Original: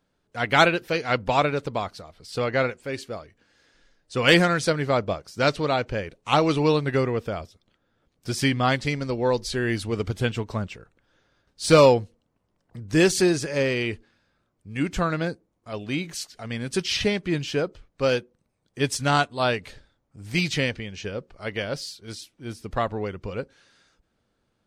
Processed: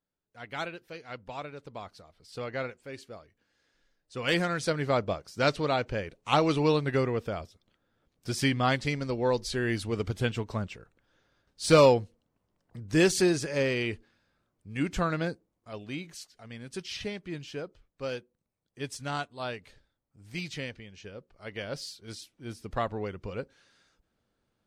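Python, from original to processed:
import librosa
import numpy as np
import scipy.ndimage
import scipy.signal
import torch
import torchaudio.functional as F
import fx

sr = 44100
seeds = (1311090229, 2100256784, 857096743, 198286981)

y = fx.gain(x, sr, db=fx.line((1.54, -18.0), (1.94, -11.0), (4.26, -11.0), (4.86, -4.0), (15.28, -4.0), (16.34, -12.5), (21.29, -12.5), (21.84, -5.0)))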